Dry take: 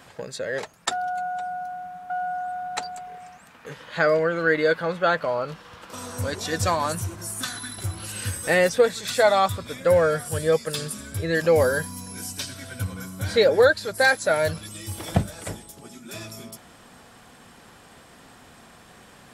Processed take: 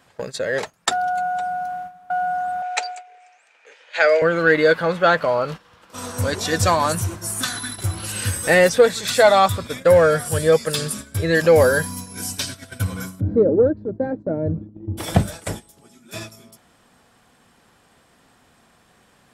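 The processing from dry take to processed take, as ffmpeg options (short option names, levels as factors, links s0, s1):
-filter_complex "[0:a]asettb=1/sr,asplit=3[s0][s1][s2];[s0]atrim=end=2.624[s3];[s1]atrim=start=2.62:end=4.22,asetpts=PTS-STARTPTS,afade=t=in:d=0.004:c=qsin,afade=t=out:st=1.596:d=0.004:c=qsin,highpass=f=450:w=0.5412,highpass=f=450:w=1.3066,equalizer=f=1100:t=q:w=4:g=-9,equalizer=f=2400:t=q:w=4:g=9,equalizer=f=6400:t=q:w=4:g=3,lowpass=f=8500:w=0.5412,lowpass=f=8500:w=1.3066[s4];[s2]atrim=start=4.216[s5];[s3][s4]acrossfade=d=0.004:c1=hsin:c2=qsin[s6];[s6][s5]acrossfade=d=0.004:c1=qsin:c2=hsin,asplit=3[s7][s8][s9];[s7]afade=t=out:st=13.19:d=0.02[s10];[s8]lowpass=f=300:t=q:w=2.5,afade=t=in:st=13.19:d=0.02,afade=t=out:st=14.97:d=0.02[s11];[s9]afade=t=in:st=14.97:d=0.02[s12];[s10][s11][s12]amix=inputs=3:normalize=0,agate=range=0.224:threshold=0.0158:ratio=16:detection=peak,acontrast=47"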